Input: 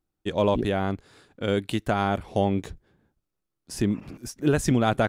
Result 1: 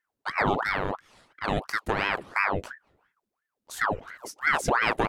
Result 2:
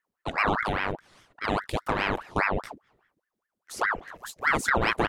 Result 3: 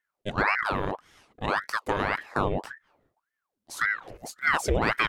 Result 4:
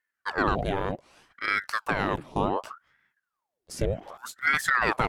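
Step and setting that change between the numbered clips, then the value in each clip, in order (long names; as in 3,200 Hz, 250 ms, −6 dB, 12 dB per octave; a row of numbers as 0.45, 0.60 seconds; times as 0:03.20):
ring modulator whose carrier an LFO sweeps, at: 2.9, 4.9, 1.8, 0.66 Hertz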